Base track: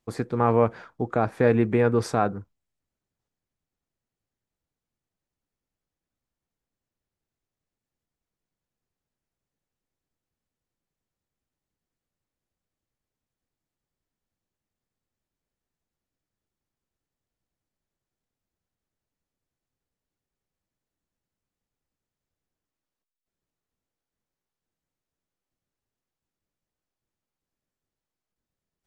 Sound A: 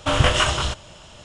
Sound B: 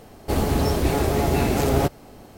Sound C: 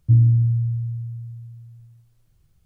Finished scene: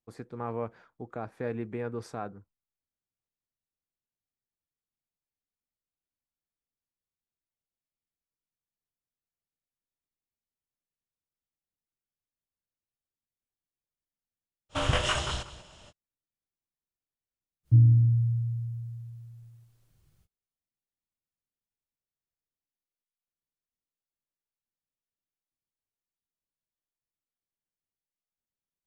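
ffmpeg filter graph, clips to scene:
-filter_complex "[0:a]volume=0.2[s0];[1:a]aecho=1:1:188:0.168[s1];[3:a]lowshelf=f=91:g=-8[s2];[s1]atrim=end=1.24,asetpts=PTS-STARTPTS,volume=0.355,afade=t=in:d=0.05,afade=t=out:st=1.19:d=0.05,adelay=14690[s3];[s2]atrim=end=2.65,asetpts=PTS-STARTPTS,volume=0.891,afade=t=in:d=0.05,afade=t=out:st=2.6:d=0.05,adelay=17630[s4];[s0][s3][s4]amix=inputs=3:normalize=0"

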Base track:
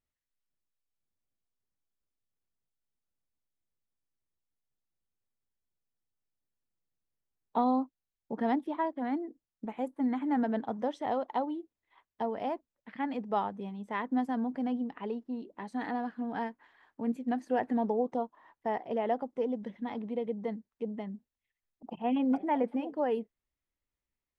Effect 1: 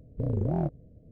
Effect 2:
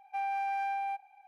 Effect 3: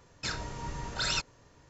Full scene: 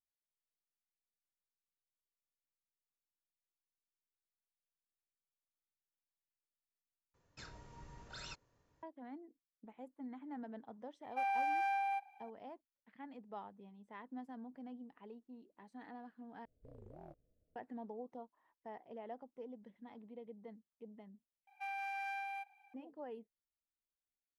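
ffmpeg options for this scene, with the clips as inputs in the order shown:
-filter_complex "[2:a]asplit=2[s0][s1];[0:a]volume=0.133[s2];[3:a]highshelf=f=2400:g=-4.5[s3];[s0]equalizer=f=570:t=o:w=0.77:g=-5[s4];[1:a]equalizer=f=140:t=o:w=2.7:g=-14.5[s5];[s1]highpass=1300[s6];[s2]asplit=4[s7][s8][s9][s10];[s7]atrim=end=7.144[s11];[s3]atrim=end=1.69,asetpts=PTS-STARTPTS,volume=0.15[s12];[s8]atrim=start=8.826:end=16.454[s13];[s5]atrim=end=1.11,asetpts=PTS-STARTPTS,volume=0.126[s14];[s9]atrim=start=17.556:end=21.474[s15];[s6]atrim=end=1.27,asetpts=PTS-STARTPTS,volume=0.841[s16];[s10]atrim=start=22.736[s17];[s4]atrim=end=1.27,asetpts=PTS-STARTPTS,volume=0.944,afade=t=in:d=0.004:c=hsin,afade=t=out:st=1.266:d=0.004:c=hsin,adelay=11030[s18];[s11][s12]acrossfade=d=0.004:c1=hsin:c2=hsin[s19];[s19][s13]acrossfade=d=0.004:c1=hsin:c2=hsin[s20];[s20][s14]acrossfade=d=0.004:c1=hsin:c2=hsin[s21];[s21][s15]acrossfade=d=0.004:c1=hsin:c2=hsin[s22];[s22][s16]acrossfade=d=0.004:c1=hsin:c2=hsin[s23];[s23][s17]acrossfade=d=0.004:c1=hsin:c2=hsin[s24];[s24][s18]amix=inputs=2:normalize=0"

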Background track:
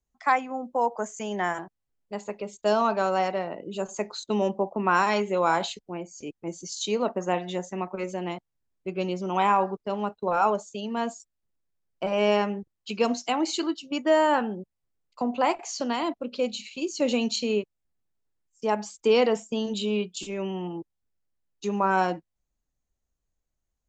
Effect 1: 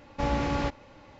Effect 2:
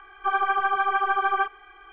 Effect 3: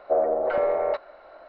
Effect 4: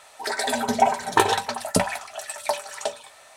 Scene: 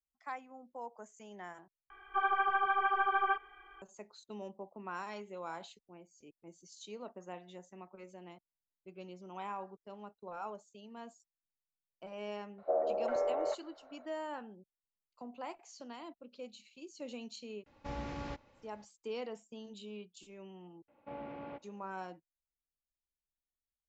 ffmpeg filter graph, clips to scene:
-filter_complex "[1:a]asplit=2[s0][s1];[0:a]volume=0.1[s2];[3:a]equalizer=f=620:w=0.53:g=7.5[s3];[s1]highpass=190,equalizer=f=620:t=q:w=4:g=5,equalizer=f=1200:t=q:w=4:g=-3,equalizer=f=1800:t=q:w=4:g=-7,lowpass=f=2600:w=0.5412,lowpass=f=2600:w=1.3066[s4];[s2]asplit=2[s5][s6];[s5]atrim=end=1.904[s7];[2:a]atrim=end=1.92,asetpts=PTS-STARTPTS,volume=0.422[s8];[s6]atrim=start=3.816[s9];[s3]atrim=end=1.48,asetpts=PTS-STARTPTS,volume=0.141,afade=t=in:d=0.004:c=hsin,afade=t=out:st=1.476:d=0.004:c=hsin,adelay=12580[s10];[s0]atrim=end=1.19,asetpts=PTS-STARTPTS,volume=0.211,afade=t=in:d=0.004:c=hsin,afade=t=out:st=1.186:d=0.004:c=hsin,adelay=17660[s11];[s4]atrim=end=1.19,asetpts=PTS-STARTPTS,volume=0.15,afade=t=in:d=0.004:c=hsin,afade=t=out:st=1.186:d=0.004:c=hsin,adelay=20880[s12];[s7][s8]acrossfade=d=0.004:c1=hsin:c2=hsin[s13];[s13][s9]acrossfade=d=0.004:c1=hsin:c2=hsin[s14];[s14][s10][s11][s12]amix=inputs=4:normalize=0"

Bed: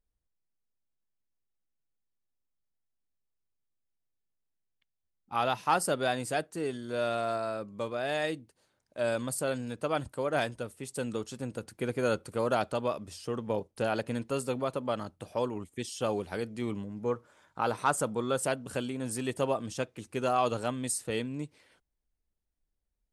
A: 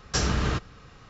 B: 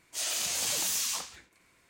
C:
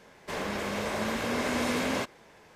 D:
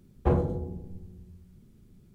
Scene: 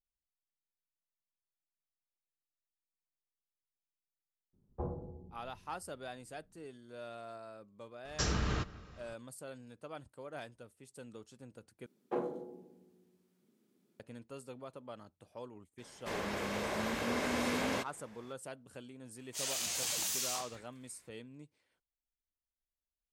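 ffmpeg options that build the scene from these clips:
-filter_complex "[4:a]asplit=2[s0][s1];[0:a]volume=0.158[s2];[s0]highshelf=f=1500:t=q:w=1.5:g=-14[s3];[1:a]asplit=2[s4][s5];[s5]adelay=176,lowpass=f=2000:p=1,volume=0.112,asplit=2[s6][s7];[s7]adelay=176,lowpass=f=2000:p=1,volume=0.49,asplit=2[s8][s9];[s9]adelay=176,lowpass=f=2000:p=1,volume=0.49,asplit=2[s10][s11];[s11]adelay=176,lowpass=f=2000:p=1,volume=0.49[s12];[s4][s6][s8][s10][s12]amix=inputs=5:normalize=0[s13];[s1]highpass=f=250:w=0.5412,highpass=f=250:w=1.3066[s14];[s2]asplit=2[s15][s16];[s15]atrim=end=11.864[s17];[s14]atrim=end=2.14,asetpts=PTS-STARTPTS,volume=0.398[s18];[s16]atrim=start=13.996[s19];[s3]atrim=end=2.14,asetpts=PTS-STARTPTS,volume=0.158,afade=t=in:d=0.004:c=hsin,afade=t=out:st=2.136:d=0.004:c=hsin,adelay=199773S[s20];[s13]atrim=end=1.09,asetpts=PTS-STARTPTS,volume=0.398,afade=t=in:d=0.004:c=hsin,afade=t=out:st=1.086:d=0.004:c=hsin,adelay=8050[s21];[3:a]atrim=end=2.55,asetpts=PTS-STARTPTS,volume=0.562,afade=t=in:d=0.004:c=hsin,afade=t=out:st=2.546:d=0.004:c=hsin,adelay=15780[s22];[2:a]atrim=end=1.89,asetpts=PTS-STARTPTS,volume=0.531,afade=t=in:d=0.004:c=hsin,afade=t=out:st=1.886:d=0.004:c=hsin,adelay=19200[s23];[s17][s18]acrossfade=d=0.004:c1=hsin:c2=hsin[s24];[s24][s19]acrossfade=d=0.004:c1=hsin:c2=hsin[s25];[s25][s20][s21][s22][s23]amix=inputs=5:normalize=0"

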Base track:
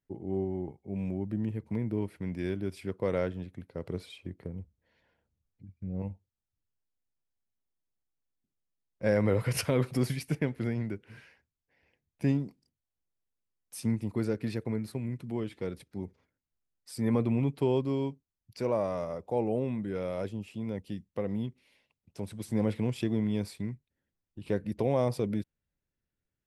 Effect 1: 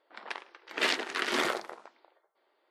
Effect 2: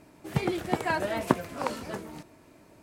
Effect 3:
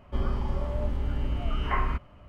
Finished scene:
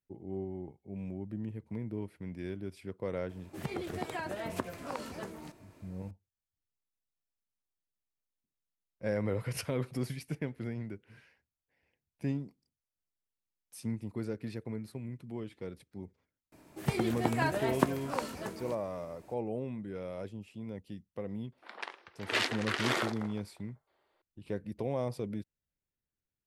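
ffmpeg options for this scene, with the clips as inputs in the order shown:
-filter_complex "[2:a]asplit=2[s0][s1];[0:a]volume=0.473[s2];[s0]acompressor=threshold=0.02:ratio=6:attack=35:release=118:knee=6:detection=peak[s3];[s1]highshelf=f=9000:g=4.5[s4];[s3]atrim=end=2.82,asetpts=PTS-STARTPTS,volume=0.631,afade=t=in:d=0.004:c=hsin,afade=t=out:st=2.816:d=0.004:c=hsin,adelay=145089S[s5];[s4]atrim=end=2.82,asetpts=PTS-STARTPTS,volume=0.668,afade=t=in:d=0.004:c=hsin,afade=t=out:st=2.816:d=0.004:c=hsin,adelay=728532S[s6];[1:a]atrim=end=2.7,asetpts=PTS-STARTPTS,volume=0.75,afade=t=in:d=0.004:c=hsin,afade=t=out:st=2.696:d=0.004:c=hsin,adelay=21520[s7];[s2][s5][s6][s7]amix=inputs=4:normalize=0"

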